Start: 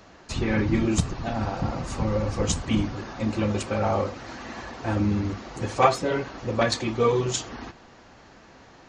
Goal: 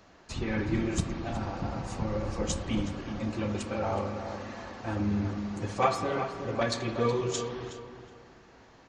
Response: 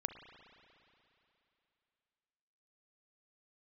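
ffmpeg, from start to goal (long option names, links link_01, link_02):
-filter_complex "[0:a]asplit=2[link_01][link_02];[link_02]adelay=369,lowpass=frequency=2600:poles=1,volume=-8.5dB,asplit=2[link_03][link_04];[link_04]adelay=369,lowpass=frequency=2600:poles=1,volume=0.32,asplit=2[link_05][link_06];[link_06]adelay=369,lowpass=frequency=2600:poles=1,volume=0.32,asplit=2[link_07][link_08];[link_08]adelay=369,lowpass=frequency=2600:poles=1,volume=0.32[link_09];[link_01][link_03][link_05][link_07][link_09]amix=inputs=5:normalize=0[link_10];[1:a]atrim=start_sample=2205,afade=type=out:start_time=0.4:duration=0.01,atrim=end_sample=18081[link_11];[link_10][link_11]afir=irnorm=-1:irlink=0,volume=-5.5dB"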